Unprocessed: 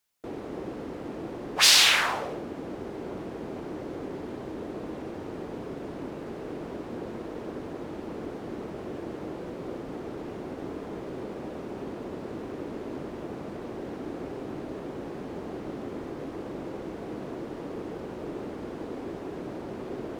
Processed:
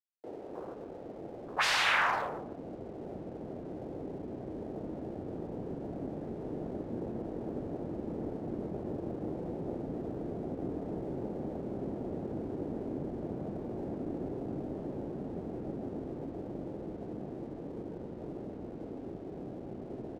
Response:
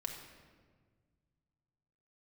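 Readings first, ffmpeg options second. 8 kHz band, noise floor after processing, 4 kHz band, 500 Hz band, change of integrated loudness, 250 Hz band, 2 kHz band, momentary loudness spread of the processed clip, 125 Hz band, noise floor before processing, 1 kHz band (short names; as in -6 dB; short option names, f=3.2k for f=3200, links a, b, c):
under -15 dB, -45 dBFS, -14.0 dB, -3.5 dB, -6.5 dB, -2.0 dB, -4.5 dB, 6 LU, +0.5 dB, -39 dBFS, -1.5 dB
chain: -filter_complex "[0:a]acrossover=split=120[a][b];[b]acontrast=85[c];[a][c]amix=inputs=2:normalize=0,asubboost=boost=8:cutoff=170,afwtdn=0.0282,acrossover=split=440 2000:gain=0.2 1 0.112[d][e][f];[d][e][f]amix=inputs=3:normalize=0,dynaudnorm=f=580:g=17:m=4dB,aeval=exprs='sgn(val(0))*max(abs(val(0))-0.00168,0)':c=same,asplit=2[g][h];[h]adelay=150,highpass=300,lowpass=3.4k,asoftclip=type=hard:threshold=-20.5dB,volume=-10dB[i];[g][i]amix=inputs=2:normalize=0,volume=-5.5dB"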